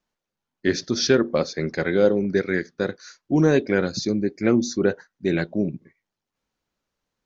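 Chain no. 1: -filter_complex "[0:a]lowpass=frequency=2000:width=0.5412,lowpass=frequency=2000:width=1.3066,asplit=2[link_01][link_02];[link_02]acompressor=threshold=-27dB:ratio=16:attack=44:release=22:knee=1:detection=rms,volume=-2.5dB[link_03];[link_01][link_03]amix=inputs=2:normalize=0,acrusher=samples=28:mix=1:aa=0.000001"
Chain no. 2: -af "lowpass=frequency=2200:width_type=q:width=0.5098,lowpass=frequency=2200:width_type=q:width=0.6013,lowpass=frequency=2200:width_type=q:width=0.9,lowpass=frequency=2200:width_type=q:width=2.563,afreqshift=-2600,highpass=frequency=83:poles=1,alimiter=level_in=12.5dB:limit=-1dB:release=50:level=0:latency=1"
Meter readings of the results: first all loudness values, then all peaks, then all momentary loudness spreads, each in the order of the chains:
−20.0, −10.5 LKFS; −4.5, −1.0 dBFS; 9, 7 LU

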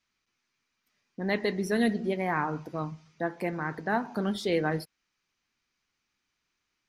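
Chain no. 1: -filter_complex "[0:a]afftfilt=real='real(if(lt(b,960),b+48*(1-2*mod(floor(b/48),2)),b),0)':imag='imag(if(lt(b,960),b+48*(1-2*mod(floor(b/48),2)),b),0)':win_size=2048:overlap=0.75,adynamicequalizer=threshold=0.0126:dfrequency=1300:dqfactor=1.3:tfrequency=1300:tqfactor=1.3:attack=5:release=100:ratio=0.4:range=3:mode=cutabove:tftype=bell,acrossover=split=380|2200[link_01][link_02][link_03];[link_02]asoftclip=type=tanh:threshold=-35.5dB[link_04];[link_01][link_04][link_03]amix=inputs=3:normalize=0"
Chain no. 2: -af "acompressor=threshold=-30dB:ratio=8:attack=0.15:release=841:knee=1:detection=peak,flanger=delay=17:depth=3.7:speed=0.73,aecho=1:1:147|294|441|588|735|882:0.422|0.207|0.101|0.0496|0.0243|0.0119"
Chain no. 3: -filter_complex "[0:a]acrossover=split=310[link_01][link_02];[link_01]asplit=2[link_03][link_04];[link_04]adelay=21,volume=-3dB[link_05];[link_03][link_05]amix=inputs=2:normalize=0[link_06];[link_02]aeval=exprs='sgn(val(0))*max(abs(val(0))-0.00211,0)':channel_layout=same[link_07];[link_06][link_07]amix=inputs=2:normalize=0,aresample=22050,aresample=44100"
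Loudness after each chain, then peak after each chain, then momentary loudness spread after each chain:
−36.0, −42.5, −30.0 LKFS; −21.0, −27.5, −12.0 dBFS; 7, 6, 11 LU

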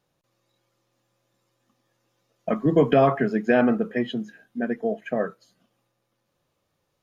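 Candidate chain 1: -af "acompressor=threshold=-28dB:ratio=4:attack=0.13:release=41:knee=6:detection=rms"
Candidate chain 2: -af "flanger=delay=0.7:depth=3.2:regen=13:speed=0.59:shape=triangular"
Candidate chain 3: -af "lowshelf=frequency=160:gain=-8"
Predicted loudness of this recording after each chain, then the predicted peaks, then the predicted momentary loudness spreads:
−34.0, −27.5, −24.5 LKFS; −23.0, −10.5, −7.5 dBFS; 7, 14, 13 LU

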